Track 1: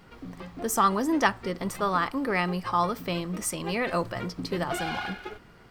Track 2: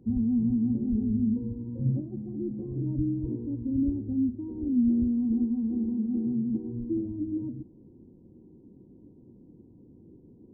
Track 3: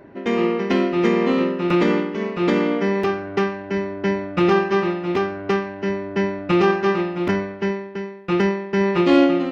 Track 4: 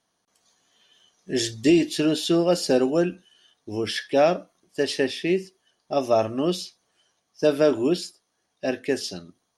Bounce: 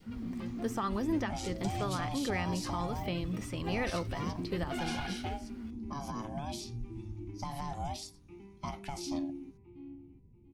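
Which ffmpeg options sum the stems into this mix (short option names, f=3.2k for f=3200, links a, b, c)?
-filter_complex "[0:a]acrossover=split=3900[a][b];[b]acompressor=threshold=-49dB:ratio=4:attack=1:release=60[c];[a][c]amix=inputs=2:normalize=0,volume=-3dB[d];[1:a]asubboost=boost=11:cutoff=97,volume=-14dB[e];[2:a]acrossover=split=480|3000[f][g][h];[g]acompressor=threshold=-39dB:ratio=2[i];[f][i][h]amix=inputs=3:normalize=0,asplit=3[j][k][l];[j]bandpass=f=300:t=q:w=8,volume=0dB[m];[k]bandpass=f=870:t=q:w=8,volume=-6dB[n];[l]bandpass=f=2.24k:t=q:w=8,volume=-9dB[o];[m][n][o]amix=inputs=3:normalize=0,aphaser=in_gain=1:out_gain=1:delay=3:decay=0.28:speed=0.33:type=sinusoidal,volume=-16.5dB,asplit=2[p][q];[q]volume=-13.5dB[r];[3:a]alimiter=limit=-15dB:level=0:latency=1:release=31,aeval=exprs='val(0)*sin(2*PI*430*n/s)':c=same,volume=-2.5dB[s];[d][p]amix=inputs=2:normalize=0,equalizer=f=890:t=o:w=2.5:g=-4,alimiter=limit=-23.5dB:level=0:latency=1:release=277,volume=0dB[t];[e][s]amix=inputs=2:normalize=0,acrossover=split=1200|5100[u][v][w];[u]acompressor=threshold=-33dB:ratio=4[x];[v]acompressor=threshold=-47dB:ratio=4[y];[w]acompressor=threshold=-44dB:ratio=4[z];[x][y][z]amix=inputs=3:normalize=0,alimiter=level_in=3dB:limit=-24dB:level=0:latency=1:release=161,volume=-3dB,volume=0dB[aa];[r]aecho=0:1:689|1378|2067|2756:1|0.26|0.0676|0.0176[ab];[t][aa][ab]amix=inputs=3:normalize=0,adynamicequalizer=threshold=0.00282:dfrequency=1200:dqfactor=1.6:tfrequency=1200:tqfactor=1.6:attack=5:release=100:ratio=0.375:range=2.5:mode=cutabove:tftype=bell"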